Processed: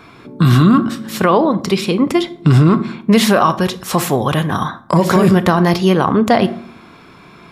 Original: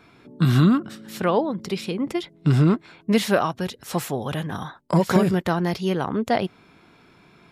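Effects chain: bell 1100 Hz +7.5 dB 0.23 oct; on a send at -14 dB: reverb RT60 0.60 s, pre-delay 26 ms; on the sum: maximiser +12.5 dB; gain -1.5 dB

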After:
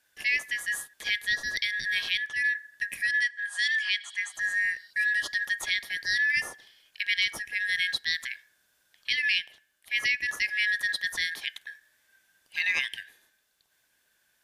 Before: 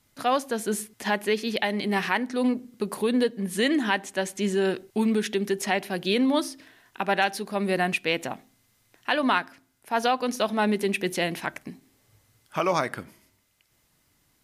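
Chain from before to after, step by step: four-band scrambler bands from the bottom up 4123; 4.04–4.91 spectral repair 2800–5600 Hz both; 3.2–4.34 elliptic band-pass 770–9000 Hz, stop band 50 dB; gain -3.5 dB

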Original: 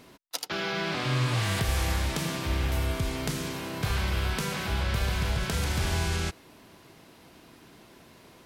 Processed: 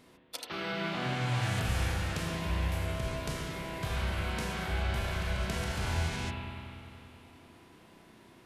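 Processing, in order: spring tank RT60 2.9 s, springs 32/36 ms, chirp 20 ms, DRR -1 dB; formant shift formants -2 st; gain -7 dB

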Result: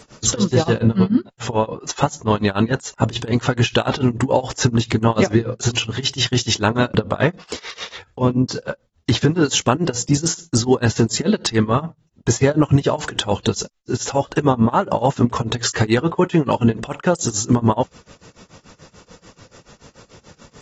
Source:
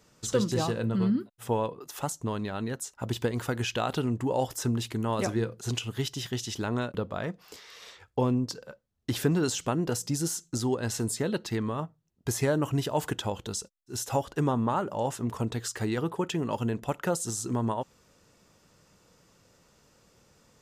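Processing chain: compressor 16:1, threshold -28 dBFS, peak gain reduction 10 dB; tremolo 6.9 Hz, depth 94%; maximiser +23 dB; gain -3.5 dB; AAC 24 kbps 48000 Hz

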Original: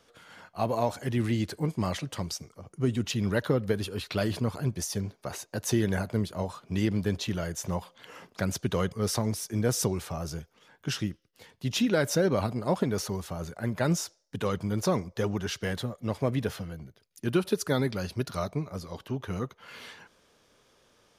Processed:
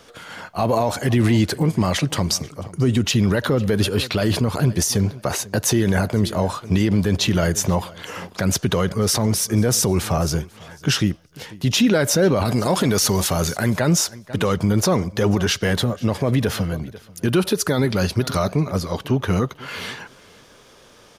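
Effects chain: 12.45–13.74 high shelf 2100 Hz +10 dB; feedback echo 0.492 s, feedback 17%, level -23.5 dB; maximiser +22.5 dB; gain -8 dB

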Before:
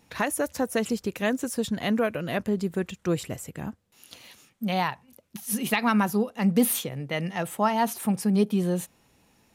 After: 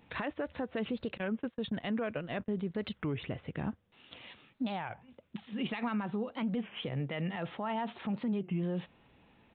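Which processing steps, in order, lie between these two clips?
1.2–2.75 gate -29 dBFS, range -33 dB; compressor, threshold -24 dBFS, peak gain reduction 8.5 dB; limiter -26.5 dBFS, peak gain reduction 11.5 dB; downsampling 8000 Hz; record warp 33 1/3 rpm, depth 250 cents

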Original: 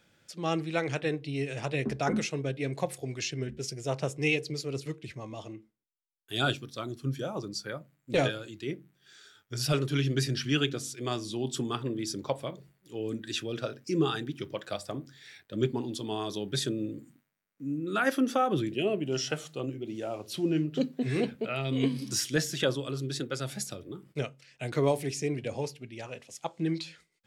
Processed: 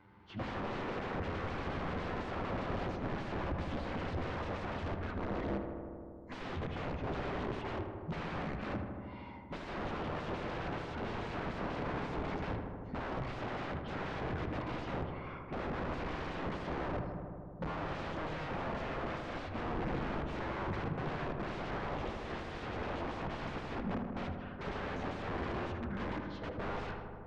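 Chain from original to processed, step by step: pitch shift by moving bins -8.5 st; low shelf 79 Hz -9.5 dB; envelope flanger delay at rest 10.6 ms, full sweep at -29.5 dBFS; compressor 10:1, threshold -35 dBFS, peak gain reduction 13 dB; transient shaper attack -3 dB, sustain +4 dB; wrapped overs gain 43.5 dB; tape spacing loss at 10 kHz 44 dB; on a send: darkening echo 78 ms, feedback 85%, low-pass 2300 Hz, level -6.5 dB; on the sum: gain +13.5 dB

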